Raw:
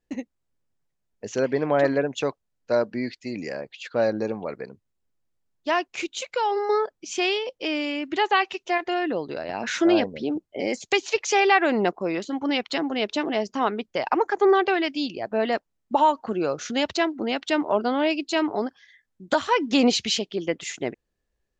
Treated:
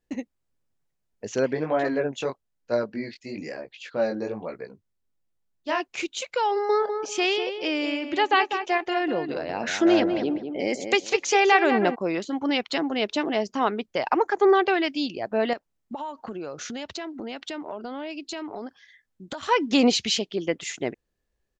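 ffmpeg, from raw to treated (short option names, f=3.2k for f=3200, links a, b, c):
-filter_complex "[0:a]asplit=3[a][b][c];[a]afade=t=out:st=1.53:d=0.02[d];[b]flanger=delay=17:depth=6:speed=1.1,afade=t=in:st=1.53:d=0.02,afade=t=out:st=5.8:d=0.02[e];[c]afade=t=in:st=5.8:d=0.02[f];[d][e][f]amix=inputs=3:normalize=0,asplit=3[g][h][i];[g]afade=t=out:st=6.8:d=0.02[j];[h]asplit=2[k][l];[l]adelay=198,lowpass=f=2k:p=1,volume=-7dB,asplit=2[m][n];[n]adelay=198,lowpass=f=2k:p=1,volume=0.24,asplit=2[o][p];[p]adelay=198,lowpass=f=2k:p=1,volume=0.24[q];[k][m][o][q]amix=inputs=4:normalize=0,afade=t=in:st=6.8:d=0.02,afade=t=out:st=11.94:d=0.02[r];[i]afade=t=in:st=11.94:d=0.02[s];[j][r][s]amix=inputs=3:normalize=0,asettb=1/sr,asplit=3[t][u][v];[t]atrim=end=15.534[w];[u]atrim=start=15.53:end=19.43,asetpts=PTS-STARTPTS,afade=t=in:d=0.004:c=qsin,afade=t=out:st=3.896:d=0.004:c=qsin,acompressor=threshold=-31dB:ratio=6:attack=3.2:release=140:knee=1:detection=peak[x];[v]atrim=start=19.426[y];[w][x]acrossfade=d=0.004:c1=hsin:c2=qsin[z];[z][y]acrossfade=d=0.004:c1=qsin:c2=hsin"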